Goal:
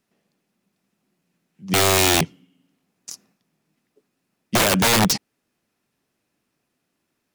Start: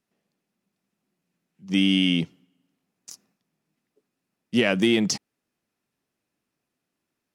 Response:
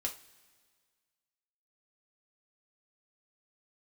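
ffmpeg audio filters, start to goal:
-af "aeval=exprs='(mod(7.94*val(0)+1,2)-1)/7.94':c=same,volume=6.5dB"

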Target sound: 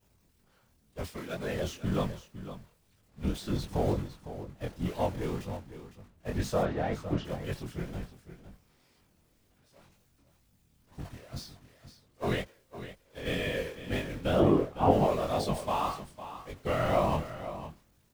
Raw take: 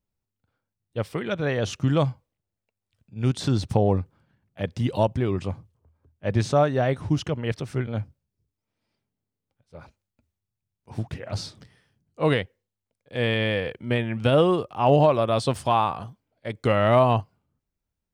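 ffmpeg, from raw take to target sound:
-filter_complex "[0:a]aeval=exprs='val(0)+0.5*0.0501*sgn(val(0))':c=same,agate=range=-33dB:threshold=-20dB:ratio=3:detection=peak,asplit=3[a][b][c];[a]afade=t=out:st=6.62:d=0.02[d];[b]lowpass=3.1k,afade=t=in:st=6.62:d=0.02,afade=t=out:st=7.24:d=0.02[e];[c]afade=t=in:st=7.24:d=0.02[f];[d][e][f]amix=inputs=3:normalize=0,asplit=3[g][h][i];[g]afade=t=out:st=12.41:d=0.02[j];[h]acompressor=threshold=-30dB:ratio=4,afade=t=in:st=12.41:d=0.02,afade=t=out:st=13.25:d=0.02[k];[i]afade=t=in:st=13.25:d=0.02[l];[j][k][l]amix=inputs=3:normalize=0,asettb=1/sr,asplit=3[m][n][o];[m]atrim=end=14.404[p];[n]atrim=start=14.4:end=14.91,asetpts=PTS-STARTPTS,afade=t=in:d=0.004:c=qsin,afade=t=out:st=0.506:d=0.004:c=qsin,tiltshelf=f=1.4k:g=9[q];[o]atrim=start=14.906[r];[p][q]acrossfade=d=0.004:c1=hsin:c2=qsin[s];[s][r]acrossfade=d=0.004:c1=qsin:c2=hsin,afftfilt=real='hypot(re,im)*cos(2*PI*random(0))':imag='hypot(re,im)*sin(2*PI*random(1))':win_size=512:overlap=0.75,flanger=delay=20:depth=5.6:speed=2,aecho=1:1:507:0.237,volume=-1dB"

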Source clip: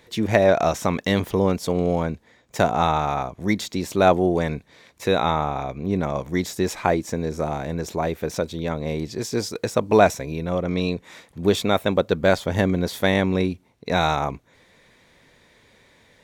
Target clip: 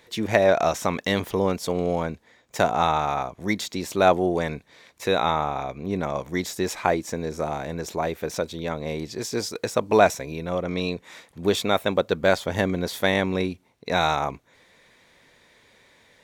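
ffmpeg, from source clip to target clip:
-af "lowshelf=f=320:g=-6.5"

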